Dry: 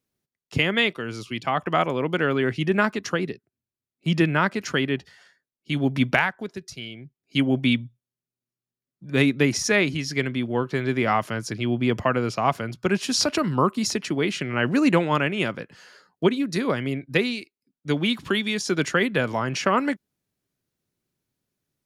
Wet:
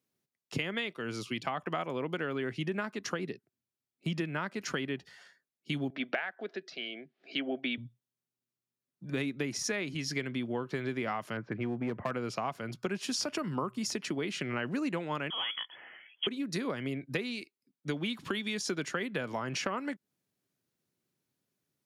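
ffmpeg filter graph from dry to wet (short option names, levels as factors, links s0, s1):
-filter_complex "[0:a]asettb=1/sr,asplit=3[s0][s1][s2];[s0]atrim=end=5.904[s3];[s1]atrim=start=5.9:end=7.78,asetpts=PTS-STARTPTS,afade=t=in:d=0.004:c=qsin,afade=t=out:st=1.876:d=0.004:c=qsin,acompressor=mode=upward:threshold=0.0282:ratio=2.5:attack=3.2:release=140:knee=2.83:detection=peak,highpass=f=260:w=0.5412,highpass=f=260:w=1.3066,equalizer=f=270:t=q:w=4:g=-3,equalizer=f=680:t=q:w=4:g=7,equalizer=f=970:t=q:w=4:g=-8,equalizer=f=1700:t=q:w=4:g=4,lowpass=f=4000:w=0.5412,lowpass=f=4000:w=1.3066[s4];[s2]atrim=start=7.776[s5];[s3][s4]acrossfade=d=0.004:c1=hsin:c2=qsin[s6];[s6][s5]acrossfade=d=0.004:c1=qsin:c2=hsin,asettb=1/sr,asplit=3[s7][s8][s9];[s7]atrim=end=11.374[s10];[s8]atrim=start=11.37:end=12.11,asetpts=PTS-STARTPTS,afade=t=in:d=0.004:c=qsin,afade=t=out:st=0.736:d=0.004:c=qsin,lowpass=f=2100:w=0.5412,lowpass=f=2100:w=1.3066,aeval=exprs='clip(val(0),-1,0.0944)':c=same[s11];[s9]atrim=start=12.106[s12];[s10][s11]acrossfade=d=0.004:c1=hsin:c2=qsin[s13];[s13][s12]acrossfade=d=0.004:c1=qsin:c2=hsin,asettb=1/sr,asplit=3[s14][s15][s16];[s14]atrim=end=13.154[s17];[s15]atrim=start=13.15:end=13.92,asetpts=PTS-STARTPTS,afade=t=in:d=0.004:c=qsin,afade=t=out:st=0.766:d=0.004:c=qsin,bandreject=f=4000:w=8.1,bandreject=f=62.07:t=h:w=4,bandreject=f=124.14:t=h:w=4[s18];[s16]atrim=start=13.916[s19];[s17][s18]acrossfade=d=0.004:c1=hsin:c2=qsin[s20];[s20][s19]acrossfade=d=0.004:c1=qsin:c2=hsin,asettb=1/sr,asplit=3[s21][s22][s23];[s21]atrim=end=15.304[s24];[s22]atrim=start=15.3:end=16.27,asetpts=PTS-STARTPTS,afade=t=in:d=0.004:c=qsin,afade=t=out:st=0.966:d=0.004:c=qsin,asoftclip=type=hard:threshold=0.0891,acompressor=mode=upward:threshold=0.00794:ratio=2.5:attack=3.2:release=140:knee=2.83:detection=peak,lowpass=f=3000:t=q:w=0.5098,lowpass=f=3000:t=q:w=0.6013,lowpass=f=3000:t=q:w=0.9,lowpass=f=3000:t=q:w=2.563,afreqshift=-3500[s25];[s23]atrim=start=16.266[s26];[s24][s25]acrossfade=d=0.004:c1=hsin:c2=qsin[s27];[s27][s26]acrossfade=d=0.004:c1=qsin:c2=hsin,highpass=120,acompressor=threshold=0.0355:ratio=6,volume=0.794"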